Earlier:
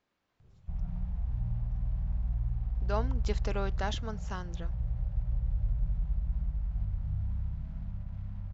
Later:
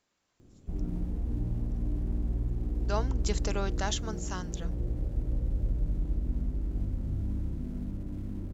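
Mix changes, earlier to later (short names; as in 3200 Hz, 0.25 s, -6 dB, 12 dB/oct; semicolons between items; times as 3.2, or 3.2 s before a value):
background: remove Chebyshev band-stop 140–790 Hz, order 2; master: remove air absorption 180 m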